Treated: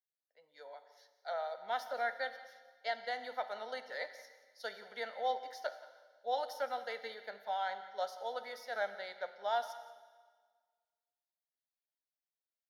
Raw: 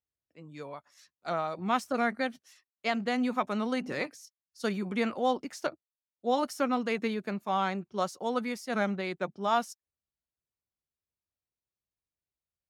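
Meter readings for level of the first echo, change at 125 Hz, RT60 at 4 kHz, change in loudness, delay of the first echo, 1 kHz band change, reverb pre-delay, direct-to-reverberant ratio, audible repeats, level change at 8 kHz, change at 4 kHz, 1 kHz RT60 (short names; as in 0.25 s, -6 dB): -17.5 dB, under -30 dB, 1.5 s, -8.5 dB, 0.177 s, -6.0 dB, 5 ms, 9.5 dB, 1, -12.5 dB, -5.5 dB, 1.5 s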